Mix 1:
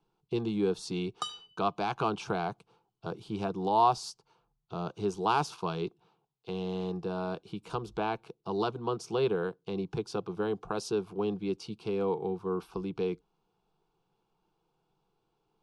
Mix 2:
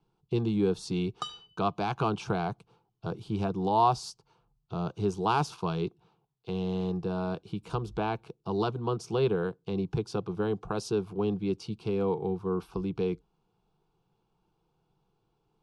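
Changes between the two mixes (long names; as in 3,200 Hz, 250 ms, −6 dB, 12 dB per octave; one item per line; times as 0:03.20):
background: add high-frequency loss of the air 57 metres
master: add parametric band 70 Hz +10.5 dB 2.5 octaves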